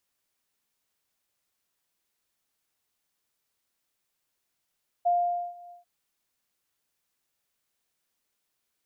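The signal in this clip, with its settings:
note with an ADSR envelope sine 702 Hz, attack 17 ms, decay 470 ms, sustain −24 dB, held 0.66 s, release 135 ms −19.5 dBFS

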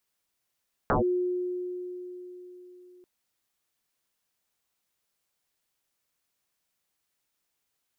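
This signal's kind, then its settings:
two-operator FM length 2.14 s, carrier 360 Hz, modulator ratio 0.36, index 9.6, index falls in 0.13 s linear, decay 4.05 s, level −20 dB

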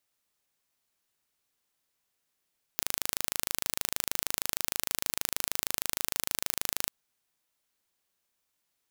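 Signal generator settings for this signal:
impulse train 26.4 per second, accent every 0, −1.5 dBFS 4.11 s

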